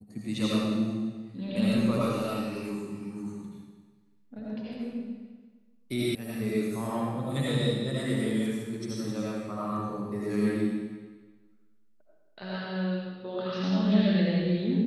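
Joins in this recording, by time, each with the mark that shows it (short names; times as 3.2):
6.15 sound cut off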